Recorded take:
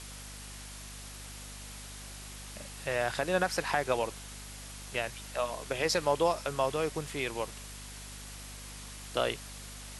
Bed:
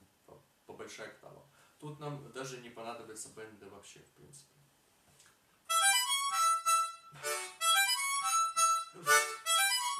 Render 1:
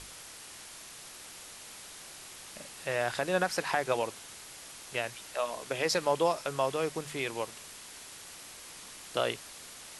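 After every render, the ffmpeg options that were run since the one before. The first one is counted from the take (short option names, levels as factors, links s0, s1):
-af "bandreject=f=50:t=h:w=6,bandreject=f=100:t=h:w=6,bandreject=f=150:t=h:w=6,bandreject=f=200:t=h:w=6,bandreject=f=250:t=h:w=6"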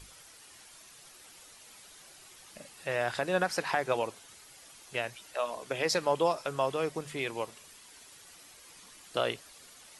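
-af "afftdn=nr=9:nf=-48"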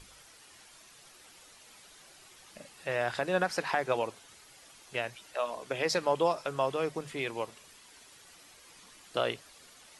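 -af "highshelf=f=7600:g=-6,bandreject=f=50:t=h:w=6,bandreject=f=100:t=h:w=6,bandreject=f=150:t=h:w=6"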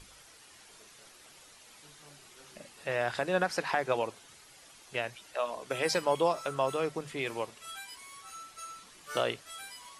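-filter_complex "[1:a]volume=0.15[s0];[0:a][s0]amix=inputs=2:normalize=0"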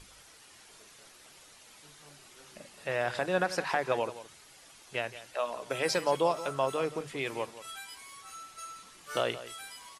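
-af "aecho=1:1:173:0.188"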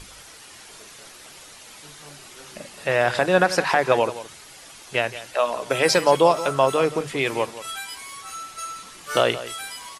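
-af "volume=3.55,alimiter=limit=0.708:level=0:latency=1"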